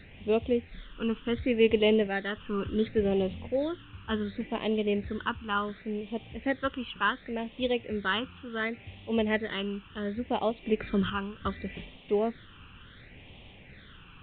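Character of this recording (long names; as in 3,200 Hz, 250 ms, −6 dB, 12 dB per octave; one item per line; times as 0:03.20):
a quantiser's noise floor 8 bits, dither triangular
phaser sweep stages 12, 0.69 Hz, lowest notch 640–1,500 Hz
A-law companding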